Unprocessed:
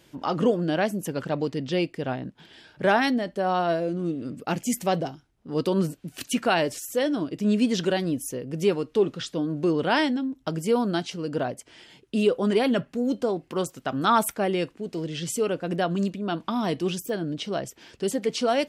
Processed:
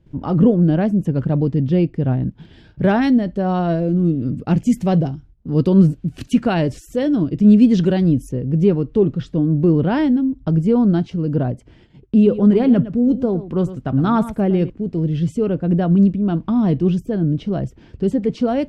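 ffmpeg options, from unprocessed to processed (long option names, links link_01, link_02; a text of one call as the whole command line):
ffmpeg -i in.wav -filter_complex "[0:a]asettb=1/sr,asplit=3[link_01][link_02][link_03];[link_01]atrim=end=2.204[link_04];[link_02]atrim=start=2.2:end=8.29,asetpts=PTS-STARTPTS,afade=type=in:duration=0.004:curve=qsin,afade=type=out:start_time=6.086:duration=0.004:curve=qsin,highshelf=frequency=2500:gain=8[link_05];[link_03]atrim=start=8.286[link_06];[link_04][link_05]acrossfade=duration=0.004:curve1=hsin:curve2=qsin[link_07];[link_07][link_06]acrossfade=duration=0.004:curve1=qsin:curve2=hsin,asettb=1/sr,asplit=3[link_08][link_09][link_10];[link_08]atrim=end=12.154[link_11];[link_09]atrim=start=12.15:end=14.7,asetpts=PTS-STARTPTS,afade=type=in:duration=0.004:curve=qsin,afade=type=out:start_time=2.546:duration=0.004:curve=qsin,aecho=1:1:111:0.2,atrim=end_sample=112455[link_12];[link_10]atrim=start=14.696[link_13];[link_11][link_12]acrossfade=duration=0.004:curve1=hsin:curve2=qsin[link_14];[link_14][link_13]acrossfade=duration=0.004:curve1=qsin:curve2=hsin,aemphasis=mode=reproduction:type=riaa,agate=range=-11dB:threshold=-49dB:ratio=16:detection=peak,lowshelf=frequency=320:gain=10.5,volume=-2.5dB" out.wav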